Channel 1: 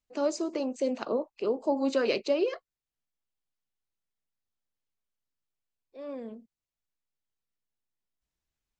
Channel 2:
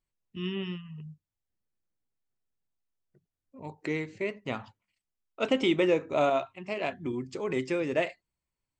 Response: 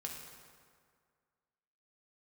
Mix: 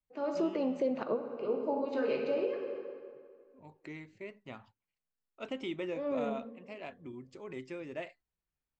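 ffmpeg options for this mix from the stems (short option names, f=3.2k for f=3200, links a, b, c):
-filter_complex "[0:a]lowpass=2.5k,bandreject=f=114.7:t=h:w=4,bandreject=f=229.4:t=h:w=4,bandreject=f=344.1:t=h:w=4,bandreject=f=458.8:t=h:w=4,bandreject=f=573.5:t=h:w=4,bandreject=f=688.2:t=h:w=4,bandreject=f=802.9:t=h:w=4,bandreject=f=917.6:t=h:w=4,bandreject=f=1.0323k:t=h:w=4,bandreject=f=1.147k:t=h:w=4,bandreject=f=1.2617k:t=h:w=4,bandreject=f=1.3764k:t=h:w=4,bandreject=f=1.4911k:t=h:w=4,bandreject=f=1.6058k:t=h:w=4,bandreject=f=1.7205k:t=h:w=4,bandreject=f=1.8352k:t=h:w=4,bandreject=f=1.9499k:t=h:w=4,bandreject=f=2.0646k:t=h:w=4,bandreject=f=2.1793k:t=h:w=4,bandreject=f=2.294k:t=h:w=4,bandreject=f=2.4087k:t=h:w=4,bandreject=f=2.5234k:t=h:w=4,bandreject=f=2.6381k:t=h:w=4,bandreject=f=2.7528k:t=h:w=4,bandreject=f=2.8675k:t=h:w=4,bandreject=f=2.9822k:t=h:w=4,bandreject=f=3.0969k:t=h:w=4,bandreject=f=3.2116k:t=h:w=4,bandreject=f=3.3263k:t=h:w=4,bandreject=f=3.441k:t=h:w=4,bandreject=f=3.5557k:t=h:w=4,bandreject=f=3.6704k:t=h:w=4,bandreject=f=3.7851k:t=h:w=4,bandreject=f=3.8998k:t=h:w=4,bandreject=f=4.0145k:t=h:w=4,bandreject=f=4.1292k:t=h:w=4,volume=2.5dB,asplit=2[a][b];[b]volume=-5dB[c];[1:a]highshelf=f=6.5k:g=-5.5,bandreject=f=470:w=12,volume=-12.5dB,asplit=2[d][e];[e]apad=whole_len=387984[f];[a][f]sidechaingate=range=-33dB:threshold=-59dB:ratio=16:detection=peak[g];[2:a]atrim=start_sample=2205[h];[c][h]afir=irnorm=-1:irlink=0[i];[g][d][i]amix=inputs=3:normalize=0,alimiter=limit=-22.5dB:level=0:latency=1:release=311"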